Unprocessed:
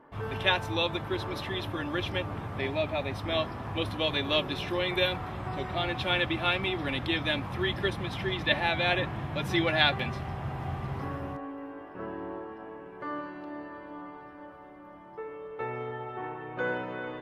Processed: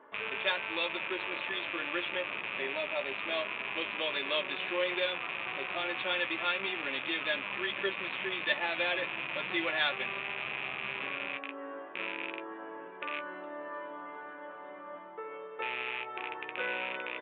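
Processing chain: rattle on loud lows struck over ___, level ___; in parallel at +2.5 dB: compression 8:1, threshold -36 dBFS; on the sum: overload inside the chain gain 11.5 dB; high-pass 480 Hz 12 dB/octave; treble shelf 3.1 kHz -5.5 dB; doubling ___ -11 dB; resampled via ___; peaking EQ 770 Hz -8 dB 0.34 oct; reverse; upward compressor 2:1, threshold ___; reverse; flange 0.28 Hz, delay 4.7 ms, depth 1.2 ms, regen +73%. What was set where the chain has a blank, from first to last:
-43 dBFS, -21 dBFS, 15 ms, 8 kHz, -33 dBFS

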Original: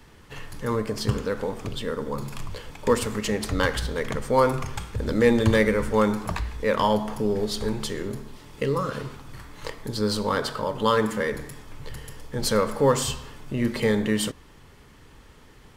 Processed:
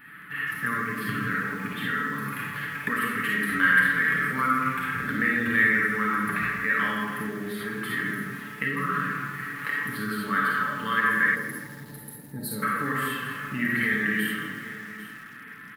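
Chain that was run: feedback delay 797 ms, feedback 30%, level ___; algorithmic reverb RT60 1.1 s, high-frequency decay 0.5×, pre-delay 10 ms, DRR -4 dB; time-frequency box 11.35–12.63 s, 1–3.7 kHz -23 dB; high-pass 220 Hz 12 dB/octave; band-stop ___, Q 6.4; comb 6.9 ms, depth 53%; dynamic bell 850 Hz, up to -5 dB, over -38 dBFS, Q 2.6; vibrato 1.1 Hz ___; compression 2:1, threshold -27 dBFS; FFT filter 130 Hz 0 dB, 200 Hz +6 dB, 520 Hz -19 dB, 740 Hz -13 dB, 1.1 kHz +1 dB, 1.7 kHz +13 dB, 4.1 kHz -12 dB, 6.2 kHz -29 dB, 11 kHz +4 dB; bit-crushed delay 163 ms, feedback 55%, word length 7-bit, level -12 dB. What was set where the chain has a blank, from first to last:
-22 dB, 960 Hz, 5.8 cents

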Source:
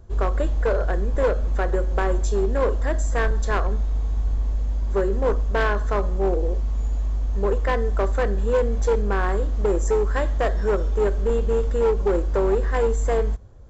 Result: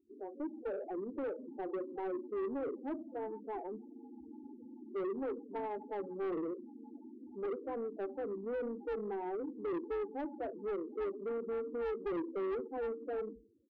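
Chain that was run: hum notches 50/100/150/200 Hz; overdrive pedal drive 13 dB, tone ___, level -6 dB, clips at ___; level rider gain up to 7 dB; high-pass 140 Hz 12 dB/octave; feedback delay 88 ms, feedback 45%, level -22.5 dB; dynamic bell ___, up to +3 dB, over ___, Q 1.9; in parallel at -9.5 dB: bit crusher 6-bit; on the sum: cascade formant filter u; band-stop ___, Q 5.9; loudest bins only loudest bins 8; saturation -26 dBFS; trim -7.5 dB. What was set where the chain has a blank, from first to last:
2.8 kHz, -10.5 dBFS, 900 Hz, -26 dBFS, 1.3 kHz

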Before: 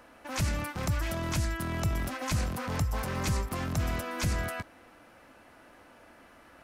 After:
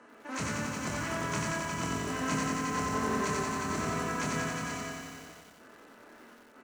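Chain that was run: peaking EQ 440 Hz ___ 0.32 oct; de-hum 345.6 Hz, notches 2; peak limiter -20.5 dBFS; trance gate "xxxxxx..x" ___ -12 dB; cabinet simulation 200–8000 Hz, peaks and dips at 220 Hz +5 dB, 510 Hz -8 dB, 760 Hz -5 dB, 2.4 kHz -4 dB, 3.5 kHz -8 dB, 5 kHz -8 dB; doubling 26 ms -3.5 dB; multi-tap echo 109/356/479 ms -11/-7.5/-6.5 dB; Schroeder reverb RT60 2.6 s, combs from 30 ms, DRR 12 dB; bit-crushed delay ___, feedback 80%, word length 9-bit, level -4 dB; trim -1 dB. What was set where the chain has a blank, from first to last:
+12 dB, 142 bpm, 90 ms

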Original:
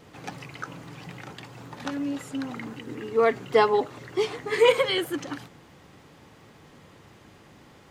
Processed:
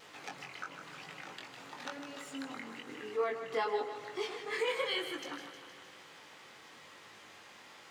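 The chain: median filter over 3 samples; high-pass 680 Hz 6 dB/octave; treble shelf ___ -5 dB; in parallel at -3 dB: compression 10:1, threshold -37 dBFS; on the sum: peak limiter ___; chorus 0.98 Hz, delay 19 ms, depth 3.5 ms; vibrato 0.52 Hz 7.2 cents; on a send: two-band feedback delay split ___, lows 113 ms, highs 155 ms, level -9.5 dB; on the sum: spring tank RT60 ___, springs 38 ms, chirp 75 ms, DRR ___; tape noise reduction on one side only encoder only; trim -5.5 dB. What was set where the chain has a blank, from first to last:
11 kHz, -15.5 dBFS, 630 Hz, 4 s, 18 dB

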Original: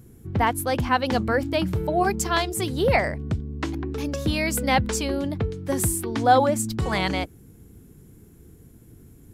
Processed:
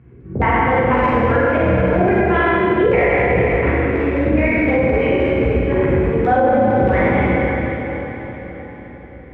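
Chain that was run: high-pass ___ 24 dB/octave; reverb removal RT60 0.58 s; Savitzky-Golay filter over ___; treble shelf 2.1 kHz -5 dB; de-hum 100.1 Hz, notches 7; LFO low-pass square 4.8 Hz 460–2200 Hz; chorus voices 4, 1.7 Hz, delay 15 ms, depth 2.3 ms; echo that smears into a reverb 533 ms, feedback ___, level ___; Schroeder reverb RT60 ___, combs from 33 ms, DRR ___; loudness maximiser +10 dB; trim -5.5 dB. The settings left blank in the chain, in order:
44 Hz, 25 samples, 47%, -11 dB, 2.6 s, -7.5 dB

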